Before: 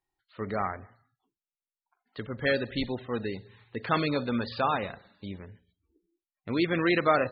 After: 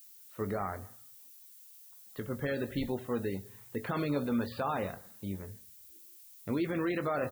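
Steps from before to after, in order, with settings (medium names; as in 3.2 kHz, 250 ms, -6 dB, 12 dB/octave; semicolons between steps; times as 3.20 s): treble shelf 2.1 kHz -11.5 dB; added noise violet -55 dBFS; peak limiter -24 dBFS, peak gain reduction 10.5 dB; doubling 21 ms -10.5 dB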